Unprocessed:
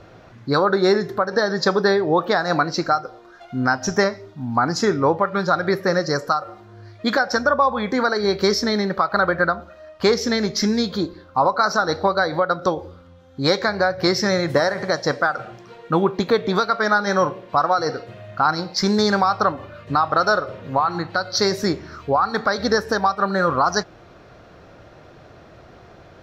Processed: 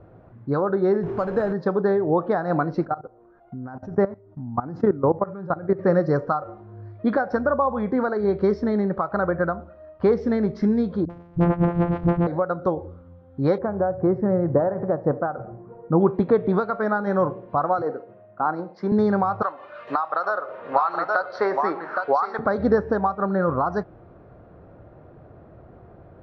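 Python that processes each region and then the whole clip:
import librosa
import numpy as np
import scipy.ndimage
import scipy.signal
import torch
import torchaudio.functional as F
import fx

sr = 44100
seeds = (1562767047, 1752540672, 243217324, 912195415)

y = fx.chain(x, sr, fx.zero_step(step_db=-23.5),
    fx.sample_hold(seeds[0], rate_hz=5700.0, jitter_pct=0), at=(1.03, 1.53))
y = fx.chain(y, sr, fx.high_shelf(hz=2200.0, db=-11.0),
    fx.level_steps(step_db=18), at=(2.85, 5.79))
y = fx.chain(y, sr, fx.sample_sort(block=256),
    fx.env_lowpass_down(base_hz=2100.0, full_db=-13.5),
    fx.dispersion(late='highs', ms=46.0, hz=340.0), at=(11.05, 12.27))
y = fx.chain(y, sr, fx.lowpass(hz=1000.0, slope=12),
    fx.echo_single(ms=79, db=-24.0), at=(13.58, 16.01))
y = fx.chain(y, sr, fx.highpass(hz=270.0, slope=12),
    fx.high_shelf(hz=2900.0, db=-11.5),
    fx.band_widen(depth_pct=40), at=(17.82, 18.92))
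y = fx.chain(y, sr, fx.highpass(hz=860.0, slope=12),
    fx.echo_single(ms=816, db=-9.0),
    fx.band_squash(depth_pct=100), at=(19.42, 22.39))
y = scipy.signal.sosfilt(scipy.signal.bessel(2, 780.0, 'lowpass', norm='mag', fs=sr, output='sos'), y)
y = fx.peak_eq(y, sr, hz=92.0, db=2.5, octaves=2.0)
y = fx.rider(y, sr, range_db=10, speed_s=2.0)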